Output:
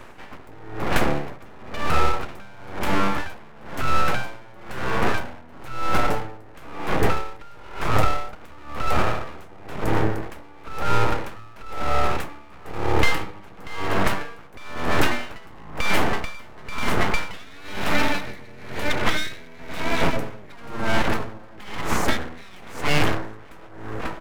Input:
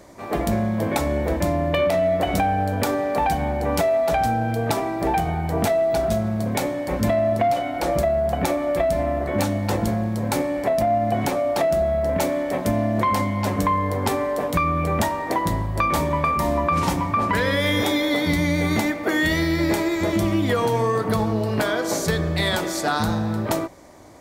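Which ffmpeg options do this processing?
-filter_complex "[0:a]highshelf=f=2.3k:t=q:w=3:g=-9,asplit=2[a][b];[b]adelay=542.3,volume=-9dB,highshelf=f=4k:g=-12.2[c];[a][c]amix=inputs=2:normalize=0,aeval=exprs='abs(val(0))':c=same,acrossover=split=320|3000[d][e][f];[e]acompressor=threshold=-26dB:ratio=6[g];[d][g][f]amix=inputs=3:normalize=0,aeval=exprs='val(0)*pow(10,-26*(0.5-0.5*cos(2*PI*1*n/s))/20)':c=same,volume=6.5dB"

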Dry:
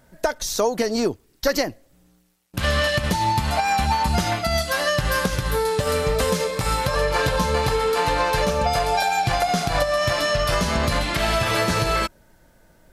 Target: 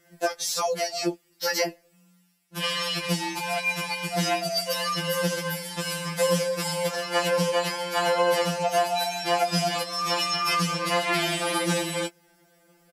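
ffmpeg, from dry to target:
-filter_complex "[0:a]highpass=f=420:p=1,asplit=2[a][b];[b]adelay=12,volume=-9dB[c];[a][c]amix=inputs=2:normalize=0,afftfilt=real='re*2.83*eq(mod(b,8),0)':imag='im*2.83*eq(mod(b,8),0)':win_size=2048:overlap=0.75,volume=1.5dB"

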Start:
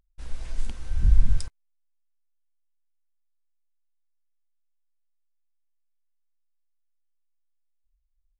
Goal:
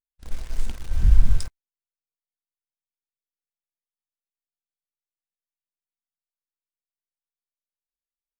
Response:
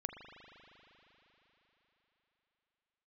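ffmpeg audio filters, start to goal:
-filter_complex "[0:a]agate=range=-33dB:threshold=-26dB:ratio=3:detection=peak,asplit=2[a][b];[b]acrusher=bits=5:mix=0:aa=0.000001,volume=-9dB[c];[a][c]amix=inputs=2:normalize=0"

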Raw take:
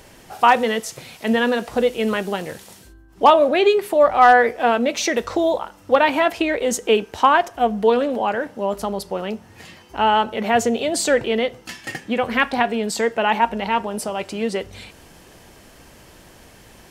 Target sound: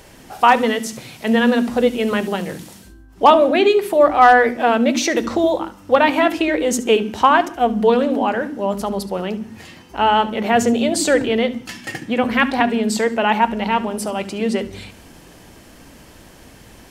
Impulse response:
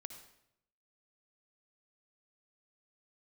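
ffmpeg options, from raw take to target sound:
-filter_complex "[0:a]asplit=2[a][b];[b]lowshelf=f=400:t=q:w=3:g=11.5[c];[1:a]atrim=start_sample=2205,atrim=end_sample=6174,adelay=71[d];[c][d]afir=irnorm=-1:irlink=0,volume=-11dB[e];[a][e]amix=inputs=2:normalize=0,volume=1.5dB"

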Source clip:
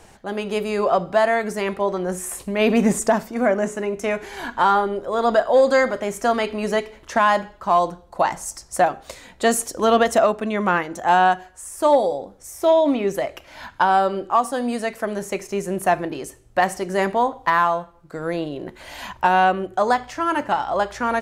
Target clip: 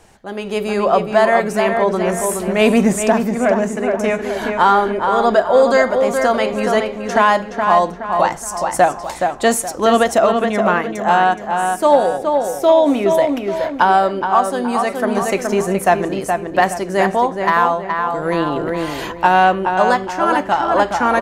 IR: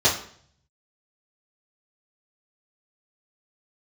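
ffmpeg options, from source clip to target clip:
-filter_complex "[0:a]asplit=2[a][b];[b]adelay=421,lowpass=f=3.2k:p=1,volume=-5dB,asplit=2[c][d];[d]adelay=421,lowpass=f=3.2k:p=1,volume=0.42,asplit=2[e][f];[f]adelay=421,lowpass=f=3.2k:p=1,volume=0.42,asplit=2[g][h];[h]adelay=421,lowpass=f=3.2k:p=1,volume=0.42,asplit=2[i][j];[j]adelay=421,lowpass=f=3.2k:p=1,volume=0.42[k];[c][e][g][i][k]amix=inputs=5:normalize=0[l];[a][l]amix=inputs=2:normalize=0,dynaudnorm=f=330:g=3:m=11.5dB,volume=-1dB"

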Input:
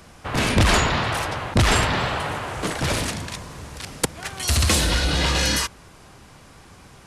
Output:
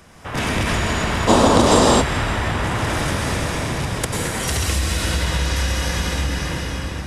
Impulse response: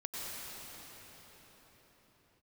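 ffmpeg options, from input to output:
-filter_complex "[0:a]equalizer=f=1.8k:t=o:w=0.34:g=2.5,bandreject=f=4.3k:w=11[a];[1:a]atrim=start_sample=2205[b];[a][b]afir=irnorm=-1:irlink=0,acompressor=threshold=-21dB:ratio=6,asplit=3[c][d][e];[c]afade=t=out:st=1.27:d=0.02[f];[d]equalizer=f=125:t=o:w=1:g=-3,equalizer=f=250:t=o:w=1:g=12,equalizer=f=500:t=o:w=1:g=12,equalizer=f=1k:t=o:w=1:g=8,equalizer=f=2k:t=o:w=1:g=-6,equalizer=f=4k:t=o:w=1:g=8,equalizer=f=8k:t=o:w=1:g=10,afade=t=in:st=1.27:d=0.02,afade=t=out:st=2:d=0.02[g];[e]afade=t=in:st=2:d=0.02[h];[f][g][h]amix=inputs=3:normalize=0,volume=3.5dB"

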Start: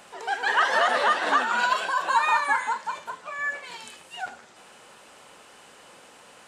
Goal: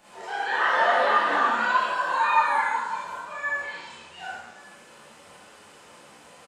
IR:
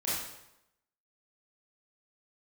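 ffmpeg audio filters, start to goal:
-filter_complex "[0:a]acrossover=split=230|4200[a][b][c];[a]acompressor=mode=upward:threshold=-59dB:ratio=2.5[d];[d][b][c]amix=inputs=3:normalize=0,flanger=delay=9.3:depth=4.7:regen=50:speed=0.91:shape=sinusoidal,asettb=1/sr,asplit=3[e][f][g];[e]atrim=end=3.614[h];[f]atrim=start=3.61:end=4.19,asetpts=PTS-STARTPTS,afade=t=in:d=0.004:c=qsin,afade=t=out:st=0.576:d=0.004:c=qsin,lowpass=6.3k[i];[g]atrim=start=4.186[j];[h][i]acrossfade=d=0.004:c1=hsin:c2=qsin[k];[k][j]acrossfade=d=0.004:c1=qsin:c2=hsin[l];[1:a]atrim=start_sample=2205[m];[l][m]afir=irnorm=-1:irlink=0,acrossover=split=3600[n][o];[o]acompressor=threshold=-46dB:ratio=4:attack=1:release=60[p];[n][p]amix=inputs=2:normalize=0,aecho=1:1:1127:0.0631,volume=-2dB"

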